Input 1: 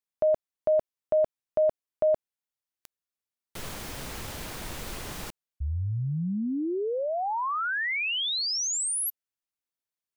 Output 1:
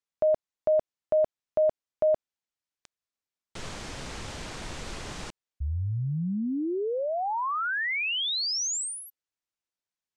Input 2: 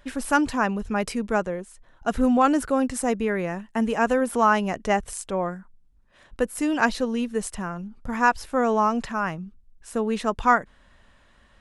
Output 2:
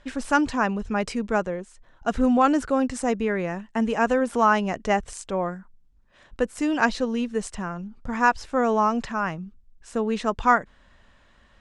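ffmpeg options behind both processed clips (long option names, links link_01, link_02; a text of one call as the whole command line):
ffmpeg -i in.wav -af "lowpass=frequency=8100:width=0.5412,lowpass=frequency=8100:width=1.3066" out.wav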